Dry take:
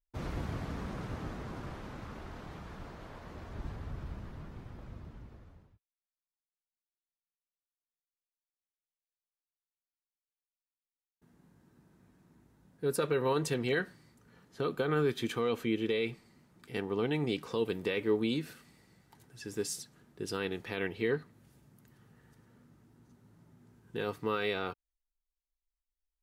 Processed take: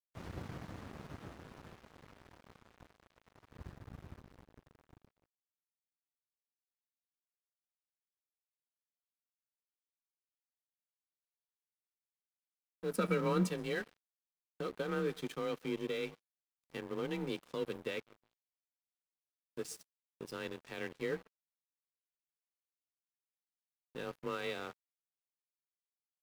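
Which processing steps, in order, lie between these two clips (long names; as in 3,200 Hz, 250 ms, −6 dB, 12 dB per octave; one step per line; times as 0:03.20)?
0:18.00–0:19.55: guitar amp tone stack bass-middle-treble 10-0-1
on a send at −19 dB: convolution reverb RT60 0.55 s, pre-delay 113 ms
on the sum: frequency shifter +28 Hz
0:12.91–0:13.49: hollow resonant body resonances 210/1,300/2,300 Hz, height 14 dB → 17 dB, ringing for 50 ms
dead-zone distortion −42.5 dBFS
in parallel at −11 dB: bit reduction 8 bits
on the sum: level −7 dB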